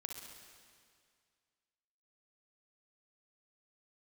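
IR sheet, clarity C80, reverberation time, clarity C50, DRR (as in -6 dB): 5.0 dB, 2.1 s, 2.0 dB, 1.5 dB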